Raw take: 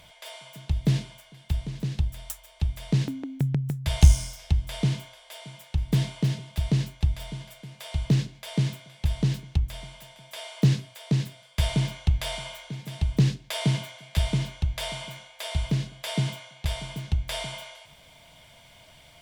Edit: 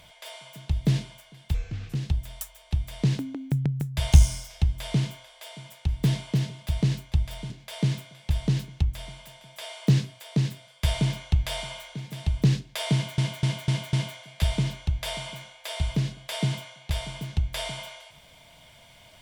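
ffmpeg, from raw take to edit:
-filter_complex "[0:a]asplit=8[s0][s1][s2][s3][s4][s5][s6][s7];[s0]atrim=end=1.544[s8];[s1]atrim=start=1.54:end=1.84,asetpts=PTS-STARTPTS,asetrate=32193,aresample=44100,atrim=end_sample=18123,asetpts=PTS-STARTPTS[s9];[s2]atrim=start=1.836:end=7.392[s10];[s3]atrim=start=8.248:end=13.932[s11];[s4]atrim=start=13.678:end=13.932[s12];[s5]atrim=start=13.678:end=13.932[s13];[s6]atrim=start=13.678:end=13.932[s14];[s7]atrim=start=13.678[s15];[s8][s9]acrossfade=d=0.004:c1=hsin:c2=hsin[s16];[s16][s10]acrossfade=d=0.004:c1=hsin:c2=hsin[s17];[s17][s11]acrossfade=d=0.004:c1=hsin:c2=hsin[s18];[s18][s12]acrossfade=d=0.004:c1=hsin:c2=hsin[s19];[s19][s13]acrossfade=d=0.004:c1=hsin:c2=hsin[s20];[s20][s14]acrossfade=d=0.004:c1=hsin:c2=hsin[s21];[s21][s15]acrossfade=d=0.004:c1=hsin:c2=hsin"

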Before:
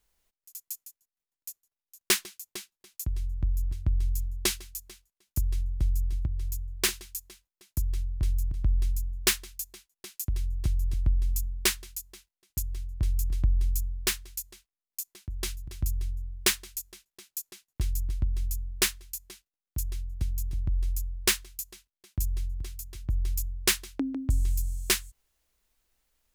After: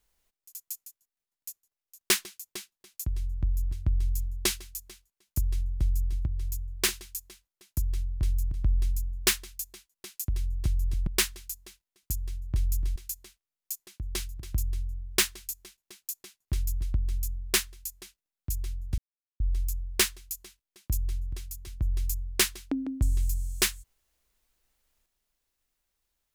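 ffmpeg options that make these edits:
-filter_complex "[0:a]asplit=5[s0][s1][s2][s3][s4];[s0]atrim=end=11.072[s5];[s1]atrim=start=11.538:end=13.432[s6];[s2]atrim=start=14.238:end=20.26,asetpts=PTS-STARTPTS,afade=t=out:st=6.018:d=0.004:c=hsin[s7];[s3]atrim=start=20.26:end=20.68,asetpts=PTS-STARTPTS,volume=0[s8];[s4]atrim=start=20.68,asetpts=PTS-STARTPTS,afade=t=in:d=0.004:c=hsin[s9];[s5][s6]acrossfade=d=0.004:c1=hsin:c2=hsin[s10];[s7][s8][s9]concat=n=3:v=0:a=1[s11];[s10][s11]acrossfade=d=0.004:c1=hsin:c2=hsin"

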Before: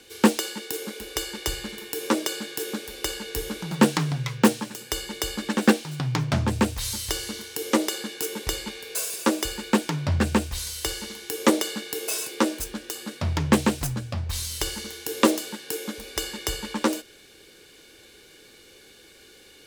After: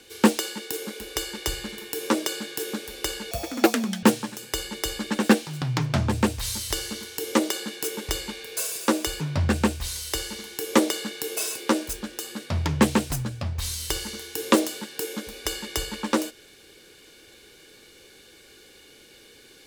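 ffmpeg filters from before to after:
-filter_complex "[0:a]asplit=4[s0][s1][s2][s3];[s0]atrim=end=3.314[s4];[s1]atrim=start=3.31:end=4.41,asetpts=PTS-STARTPTS,asetrate=67473,aresample=44100[s5];[s2]atrim=start=4.406:end=9.592[s6];[s3]atrim=start=9.918[s7];[s4][s5]acrossfade=d=0.004:c1=hsin:c2=hsin[s8];[s8][s6]acrossfade=d=0.004:c1=hsin:c2=hsin[s9];[s9][s7]acrossfade=d=0.004:c1=hsin:c2=hsin"

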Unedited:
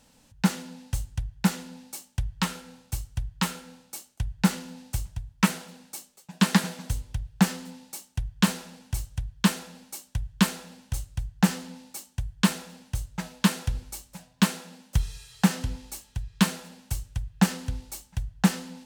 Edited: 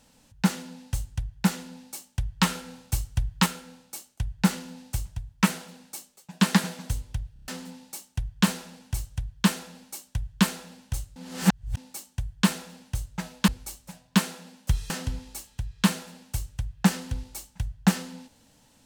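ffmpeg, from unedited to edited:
-filter_complex "[0:a]asplit=12[s0][s1][s2][s3][s4][s5][s6][s7][s8][s9][s10][s11];[s0]atrim=end=2.412[s12];[s1]atrim=start=2.408:end=3.462,asetpts=PTS-STARTPTS,volume=1.68[s13];[s2]atrim=start=3.458:end=7.362[s14];[s3]atrim=start=7.328:end=7.362[s15];[s4]atrim=start=7.328:end=7.362[s16];[s5]atrim=start=7.328:end=7.362[s17];[s6]atrim=start=7.328:end=7.362[s18];[s7]atrim=start=7.478:end=11.162[s19];[s8]atrim=start=11.158:end=11.772,asetpts=PTS-STARTPTS,areverse[s20];[s9]atrim=start=11.768:end=13.482[s21];[s10]atrim=start=13.738:end=15.162[s22];[s11]atrim=start=15.468[s23];[s12][s13]acrossfade=d=0.004:c1=hsin:c2=hsin[s24];[s24][s14]acrossfade=d=0.004:c1=hsin:c2=hsin[s25];[s25][s15]acrossfade=d=0.004:c1=hsin:c2=hsin[s26];[s26][s16]acrossfade=d=0.004:c1=hsin:c2=hsin[s27];[s27][s17]acrossfade=d=0.004:c1=hsin:c2=hsin[s28];[s28][s18]acrossfade=d=0.004:c1=hsin:c2=hsin[s29];[s29][s19]acrossfade=d=0.004:c1=hsin:c2=hsin[s30];[s30][s20]acrossfade=d=0.004:c1=hsin:c2=hsin[s31];[s31][s21]acrossfade=d=0.004:c1=hsin:c2=hsin[s32];[s32][s22]acrossfade=d=0.004:c1=hsin:c2=hsin[s33];[s33][s23]acrossfade=d=0.004:c1=hsin:c2=hsin"

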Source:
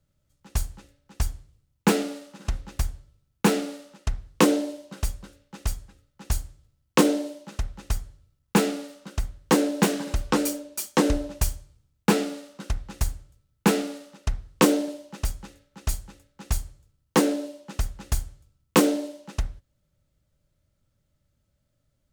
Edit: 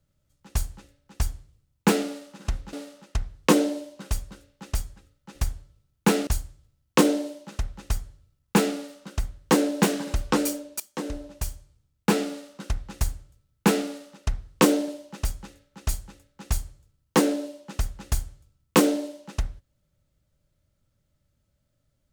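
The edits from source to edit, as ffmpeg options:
-filter_complex "[0:a]asplit=5[s0][s1][s2][s3][s4];[s0]atrim=end=2.732[s5];[s1]atrim=start=3.648:end=6.272[s6];[s2]atrim=start=2.728:end=3.652[s7];[s3]atrim=start=6.268:end=10.8,asetpts=PTS-STARTPTS,afade=t=out:st=4.528:d=0.004:c=hsin:silence=0.149624[s8];[s4]atrim=start=10.8,asetpts=PTS-STARTPTS,afade=t=in:d=1.56:silence=0.149624[s9];[s5][s6]acrossfade=d=0.004:c1=hsin:c2=hsin[s10];[s10][s7]acrossfade=d=0.004:c1=hsin:c2=hsin[s11];[s8][s9]concat=n=2:v=0:a=1[s12];[s11][s12]acrossfade=d=0.004:c1=hsin:c2=hsin"

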